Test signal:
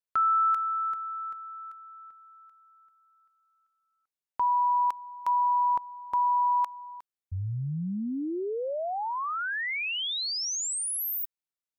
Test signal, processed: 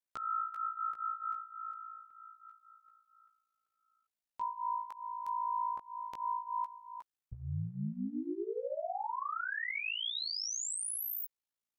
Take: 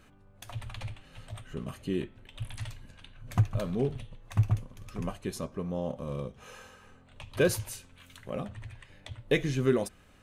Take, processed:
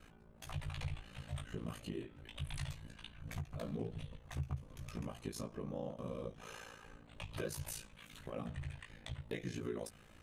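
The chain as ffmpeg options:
ffmpeg -i in.wav -af "acompressor=threshold=-34dB:ratio=8:attack=0.45:release=289:knee=1:detection=peak,flanger=delay=15.5:depth=4.1:speed=0.28,aeval=exprs='val(0)*sin(2*PI*28*n/s)':channel_layout=same,volume=4.5dB" out.wav

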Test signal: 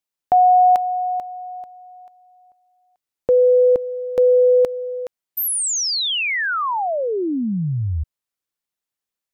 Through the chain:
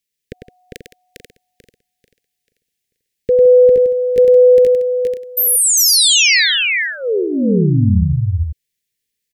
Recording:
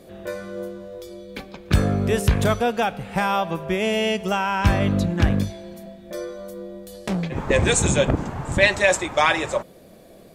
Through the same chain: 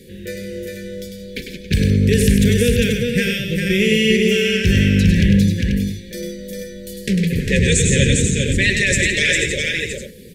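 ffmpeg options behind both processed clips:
ffmpeg -i in.wav -af "asuperstop=centerf=920:order=12:qfactor=0.74,alimiter=limit=-15dB:level=0:latency=1:release=40,equalizer=frequency=320:width=4.9:gain=-10.5,aecho=1:1:100|164|402|487:0.501|0.211|0.668|0.422,volume=7.5dB" out.wav

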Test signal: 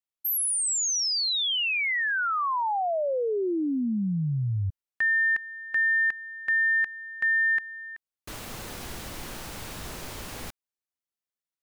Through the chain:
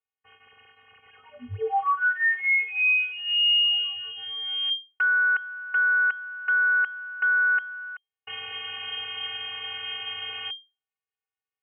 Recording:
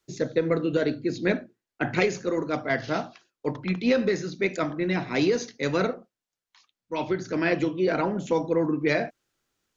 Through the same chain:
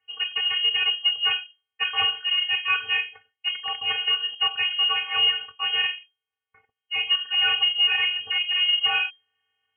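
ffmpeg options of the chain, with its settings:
ffmpeg -i in.wav -af "aeval=exprs='0.335*(cos(1*acos(clip(val(0)/0.335,-1,1)))-cos(1*PI/2))+0.00422*(cos(3*acos(clip(val(0)/0.335,-1,1)))-cos(3*PI/2))+0.15*(cos(5*acos(clip(val(0)/0.335,-1,1)))-cos(5*PI/2))':channel_layout=same,acrusher=bits=5:mode=log:mix=0:aa=0.000001,afftfilt=real='hypot(re,im)*cos(PI*b)':imag='0':win_size=512:overlap=0.75,lowpass=frequency=2700:width_type=q:width=0.5098,lowpass=frequency=2700:width_type=q:width=0.6013,lowpass=frequency=2700:width_type=q:width=0.9,lowpass=frequency=2700:width_type=q:width=2.563,afreqshift=-3200,volume=-2.5dB" out.wav

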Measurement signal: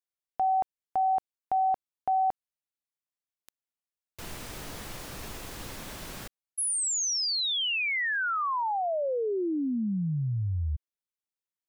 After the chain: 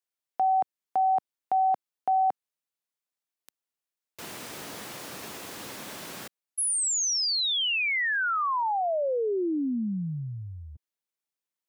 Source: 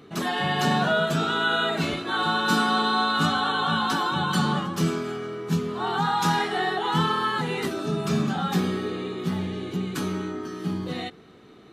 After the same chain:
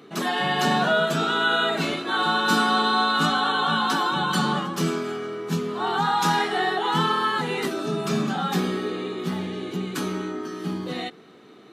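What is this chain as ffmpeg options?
ffmpeg -i in.wav -af "highpass=190,volume=2dB" out.wav

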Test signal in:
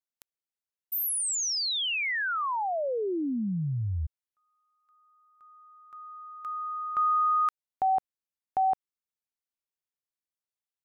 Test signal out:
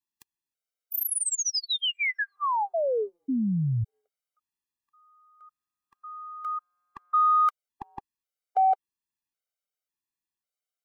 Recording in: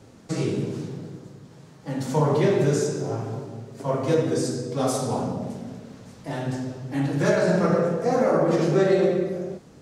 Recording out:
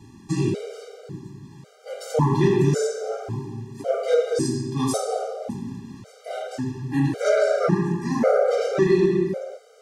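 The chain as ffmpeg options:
ffmpeg -i in.wav -af "acontrast=82,afftfilt=real='re*gt(sin(2*PI*0.91*pts/sr)*(1-2*mod(floor(b*sr/1024/400),2)),0)':imag='im*gt(sin(2*PI*0.91*pts/sr)*(1-2*mod(floor(b*sr/1024/400),2)),0)':win_size=1024:overlap=0.75,volume=-3dB" out.wav

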